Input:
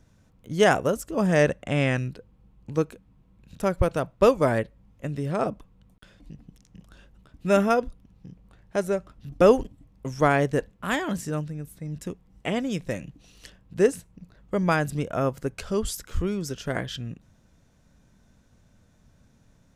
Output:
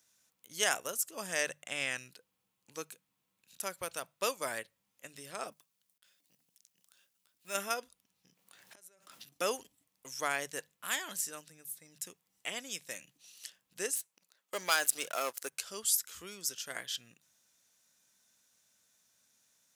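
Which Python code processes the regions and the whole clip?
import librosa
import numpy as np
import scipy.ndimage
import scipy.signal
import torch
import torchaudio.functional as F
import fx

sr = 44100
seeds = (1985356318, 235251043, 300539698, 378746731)

y = fx.chain(x, sr, fx.law_mismatch(coded='A'),
    fx.transient(attack_db=-8, sustain_db=0), at=(5.52, 7.55))
y = fx.chain(y, sr, fx.highpass(hz=130.0, slope=12),
    fx.gate_flip(shuts_db=-28.0, range_db=-27),
    fx.pre_swell(db_per_s=36.0), at=(8.28, 9.34))
y = fx.chain(y, sr, fx.highpass(hz=340.0, slope=12),
    fx.leveller(passes=2), at=(13.96, 15.52))
y = scipy.signal.sosfilt(scipy.signal.butter(2, 63.0, 'highpass', fs=sr, output='sos'), y)
y = np.diff(y, prepend=0.0)
y = fx.hum_notches(y, sr, base_hz=50, count=3)
y = y * 10.0 ** (4.5 / 20.0)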